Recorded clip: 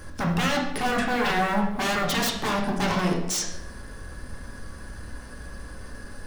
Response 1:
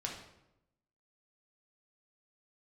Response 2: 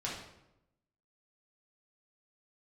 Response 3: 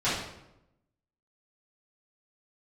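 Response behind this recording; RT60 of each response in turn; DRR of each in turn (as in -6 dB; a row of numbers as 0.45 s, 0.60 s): 1; 0.90 s, 0.90 s, 0.90 s; -1.5 dB, -6.0 dB, -14.0 dB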